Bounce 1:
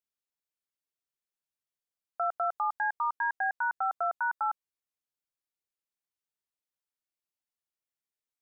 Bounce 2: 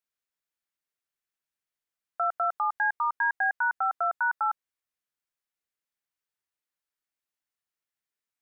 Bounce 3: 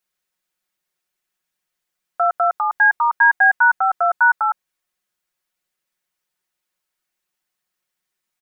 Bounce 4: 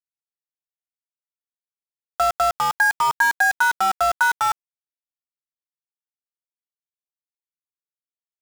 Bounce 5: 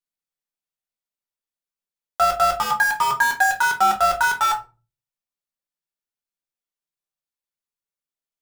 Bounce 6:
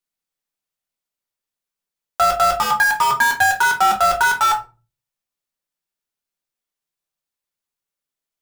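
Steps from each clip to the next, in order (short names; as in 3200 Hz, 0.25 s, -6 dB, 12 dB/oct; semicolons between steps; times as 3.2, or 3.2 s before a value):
bell 1700 Hz +5.5 dB 1.2 oct
comb 5.5 ms, depth 90%; gain +8 dB
compressor 16:1, threshold -14 dBFS, peak gain reduction 6 dB; sample gate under -22 dBFS
shoebox room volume 120 m³, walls furnished, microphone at 1.2 m
soft clip -13.5 dBFS, distortion -16 dB; gain +5 dB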